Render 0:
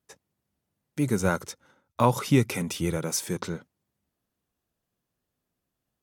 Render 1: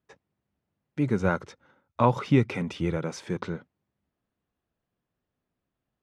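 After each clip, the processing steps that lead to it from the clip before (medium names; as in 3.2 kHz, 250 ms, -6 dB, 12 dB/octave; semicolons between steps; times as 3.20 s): low-pass 2.9 kHz 12 dB/octave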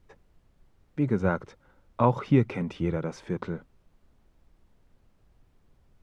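treble shelf 2.4 kHz -9.5 dB; added noise brown -60 dBFS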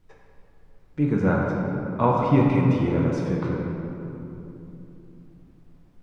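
simulated room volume 130 m³, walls hard, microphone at 0.59 m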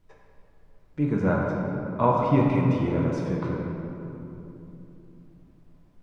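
small resonant body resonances 620/1000 Hz, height 8 dB, ringing for 90 ms; trim -2.5 dB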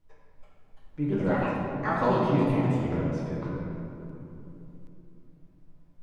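simulated room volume 110 m³, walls mixed, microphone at 0.55 m; ever faster or slower copies 357 ms, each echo +5 st, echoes 2; trim -7 dB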